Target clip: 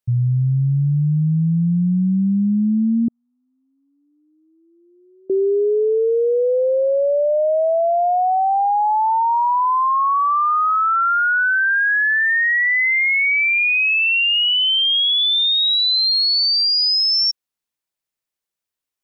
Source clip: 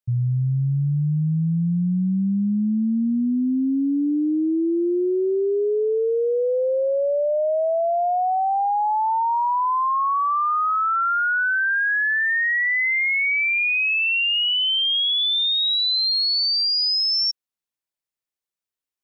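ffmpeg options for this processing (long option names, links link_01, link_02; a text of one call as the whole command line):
ffmpeg -i in.wav -filter_complex "[0:a]asettb=1/sr,asplit=3[link_01][link_02][link_03];[link_01]atrim=end=3.084[link_04];[link_02]atrim=start=3.08:end=5.3,asetpts=PTS-STARTPTS,afade=type=in:duration=0.004:curve=qsin,afade=type=out:start_time=2.216:duration=0.004:curve=qsin,asuperpass=centerf=910:order=8:qfactor=1.3[link_05];[link_03]atrim=start=5.296[link_06];[link_04][link_05]acrossfade=duration=0.004:curve1=hsin:curve2=qsin[link_07];[link_07][link_06]acrossfade=duration=0.004:curve1=qsin:curve2=hsin,volume=4dB" out.wav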